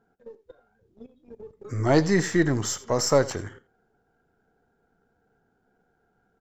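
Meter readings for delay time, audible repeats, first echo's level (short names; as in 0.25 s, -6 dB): 84 ms, 1, -18.0 dB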